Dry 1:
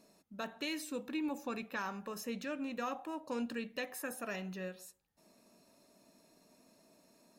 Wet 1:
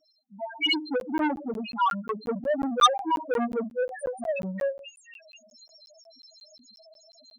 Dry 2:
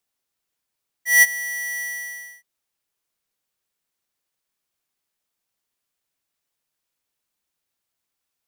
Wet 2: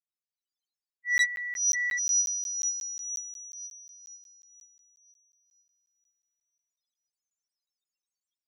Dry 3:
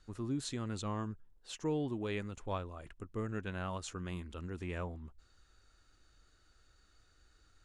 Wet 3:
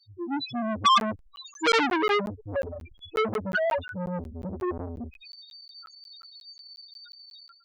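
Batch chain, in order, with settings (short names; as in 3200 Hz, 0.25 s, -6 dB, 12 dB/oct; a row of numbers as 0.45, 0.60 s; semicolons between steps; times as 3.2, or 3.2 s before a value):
median-filter separation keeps harmonic; LPF 6900 Hz 12 dB/oct; tilt +3.5 dB/oct; on a send: thin delay 0.486 s, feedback 46%, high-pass 5000 Hz, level -3.5 dB; on the sum: AGC gain up to 15 dB; loudest bins only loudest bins 1; thirty-one-band EQ 125 Hz -9 dB, 1250 Hz +11 dB, 3150 Hz +8 dB; crackling interface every 0.18 s, samples 512, zero, from 1; core saturation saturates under 2600 Hz; match loudness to -27 LUFS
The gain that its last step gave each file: +12.0, -5.0, +18.0 dB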